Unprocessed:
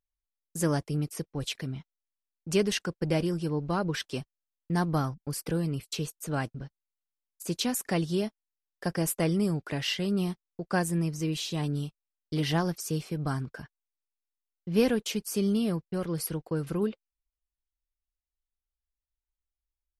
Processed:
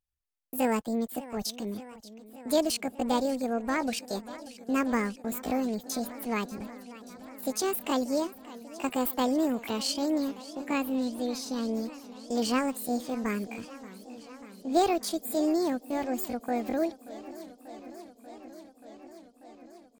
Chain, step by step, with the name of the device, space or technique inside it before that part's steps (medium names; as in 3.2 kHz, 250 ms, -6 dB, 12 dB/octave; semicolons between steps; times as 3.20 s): chipmunk voice (pitch shift +7.5 st); 10.18–11.69 s: FFT filter 200 Hz 0 dB, 1.4 kHz -6 dB, 4 kHz 0 dB, 9.2 kHz -8 dB; modulated delay 586 ms, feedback 79%, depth 152 cents, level -17.5 dB